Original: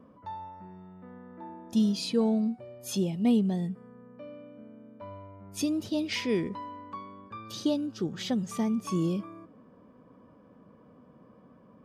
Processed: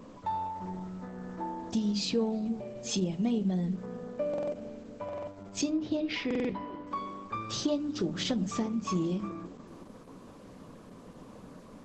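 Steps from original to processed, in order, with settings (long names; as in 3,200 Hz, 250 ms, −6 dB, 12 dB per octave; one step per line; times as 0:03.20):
high-pass filter 46 Hz 12 dB per octave
mains-hum notches 50/100/150/200/250/300 Hz
0:03.83–0:04.54: parametric band 640 Hz +9 dB 2 octaves
downward compressor 2.5 to 1, threshold −37 dBFS, peak gain reduction 11.5 dB
background noise pink −68 dBFS
0:05.70–0:06.87: high-frequency loss of the air 210 metres
tape delay 358 ms, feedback 58%, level −15.5 dB, low-pass 1,000 Hz
convolution reverb RT60 0.30 s, pre-delay 7 ms, DRR 12 dB
buffer that repeats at 0:04.29/0:05.04/0:06.26, samples 2,048, times 4
level +7 dB
Opus 12 kbit/s 48,000 Hz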